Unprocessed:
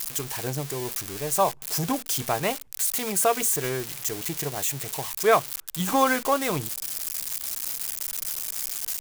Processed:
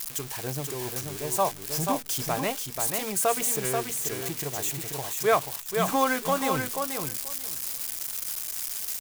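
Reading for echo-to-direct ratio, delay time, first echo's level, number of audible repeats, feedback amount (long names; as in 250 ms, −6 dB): −5.0 dB, 485 ms, −5.0 dB, 2, 17%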